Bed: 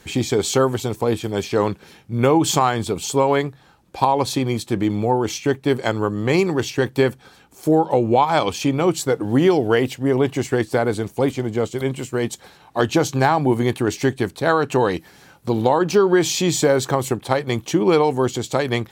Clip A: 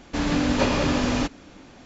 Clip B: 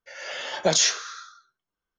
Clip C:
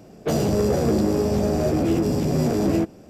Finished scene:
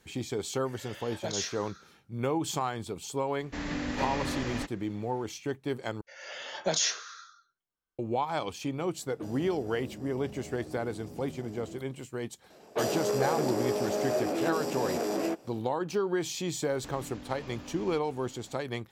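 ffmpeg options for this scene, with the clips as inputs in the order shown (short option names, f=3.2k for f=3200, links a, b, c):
-filter_complex "[2:a]asplit=2[a][b];[1:a]asplit=2[c][d];[3:a]asplit=2[e][f];[0:a]volume=-14dB[g];[c]equalizer=f=1.9k:w=4.6:g=8.5[h];[e]acompressor=threshold=-27dB:ratio=6:attack=3.2:release=140:knee=1:detection=peak[i];[f]highpass=450[j];[d]acompressor=threshold=-35dB:ratio=6:attack=3.2:release=140:knee=1:detection=peak[k];[g]asplit=2[l][m];[l]atrim=end=6.014[n];[b]atrim=end=1.98,asetpts=PTS-STARTPTS,volume=-7.5dB[o];[m]atrim=start=7.986[p];[a]atrim=end=1.98,asetpts=PTS-STARTPTS,volume=-14dB,afade=t=in:d=0.004:c=hsin,afade=t=out:st=1.976:d=0.004:c=hsin,adelay=580[q];[h]atrim=end=1.85,asetpts=PTS-STARTPTS,volume=-11.5dB,afade=t=in:d=0.004:c=hsin,afade=t=out:st=1.846:d=0.004:c=hsin,adelay=3390[r];[i]atrim=end=3.09,asetpts=PTS-STARTPTS,volume=-15dB,afade=t=in:d=0.004:c=hsin,afade=t=out:st=3.086:d=0.004:c=hsin,adelay=8940[s];[j]atrim=end=3.09,asetpts=PTS-STARTPTS,volume=-3.5dB,afade=t=in:d=0.004:c=hsin,afade=t=out:st=3.086:d=0.004:c=hsin,adelay=12500[t];[k]atrim=end=1.85,asetpts=PTS-STARTPTS,volume=-8.5dB,afade=t=in:d=0.004:c=hsin,afade=t=out:st=1.846:d=0.004:c=hsin,adelay=16710[u];[n][o]acrossfade=d=0.004:c1=hsin:c2=hsin[v];[v][p]acrossfade=d=0.004:c1=hsin:c2=hsin[w];[w][q][r][s][t][u]amix=inputs=6:normalize=0"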